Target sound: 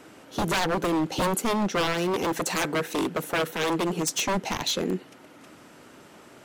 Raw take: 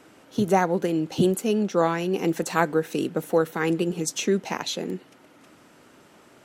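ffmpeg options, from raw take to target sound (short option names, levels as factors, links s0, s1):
-filter_complex "[0:a]aeval=exprs='0.075*(abs(mod(val(0)/0.075+3,4)-2)-1)':c=same,asettb=1/sr,asplit=3[s0][s1][s2];[s0]atrim=end=1.944[s3];[s1]atrim=start=1.94:end=4.27,asetpts=PTS-STARTPTS,afade=t=in:d=0.004:c=qsin,afade=t=out:st=2.326:d=0.004:c=qsin,lowshelf=f=91:g=-10[s4];[s2]atrim=start=4.266[s5];[s3][s4]acrossfade=d=0.004:c1=hsin:c2=qsin[s6];[s6][s5]acrossfade=d=0.004:c1=qsin:c2=hsin,volume=1.5"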